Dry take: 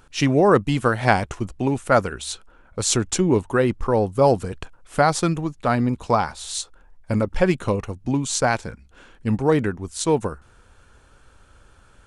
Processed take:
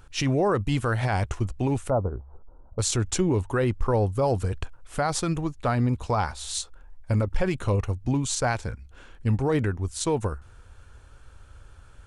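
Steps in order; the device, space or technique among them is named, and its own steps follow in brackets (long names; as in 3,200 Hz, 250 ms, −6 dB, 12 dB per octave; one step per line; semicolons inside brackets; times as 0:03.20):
0:01.90–0:02.79: Butterworth low-pass 1,000 Hz 36 dB per octave
car stereo with a boomy subwoofer (low shelf with overshoot 130 Hz +6.5 dB, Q 1.5; brickwall limiter −13 dBFS, peak gain reduction 11.5 dB)
level −2 dB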